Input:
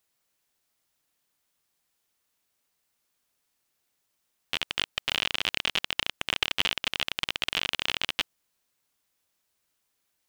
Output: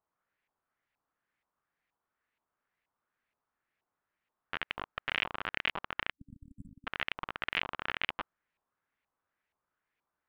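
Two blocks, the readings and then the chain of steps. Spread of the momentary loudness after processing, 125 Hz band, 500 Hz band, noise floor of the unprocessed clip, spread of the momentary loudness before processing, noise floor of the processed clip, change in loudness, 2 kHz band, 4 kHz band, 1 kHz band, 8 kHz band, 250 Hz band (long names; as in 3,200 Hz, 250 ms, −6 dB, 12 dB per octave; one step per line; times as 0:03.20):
13 LU, −5.0 dB, −5.0 dB, −77 dBFS, 4 LU, below −85 dBFS, −8.0 dB, −4.5 dB, −13.5 dB, −1.5 dB, below −25 dB, −5.0 dB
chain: time-frequency box erased 0:06.11–0:06.87, 290–7,600 Hz
auto-filter low-pass saw up 2.1 Hz 950–2,300 Hz
level −5 dB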